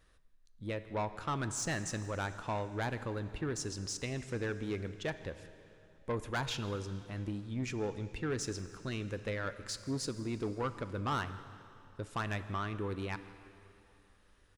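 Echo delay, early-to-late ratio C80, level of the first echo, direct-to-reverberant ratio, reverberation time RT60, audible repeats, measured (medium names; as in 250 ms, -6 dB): 161 ms, 12.5 dB, -22.0 dB, 11.0 dB, 2.9 s, 1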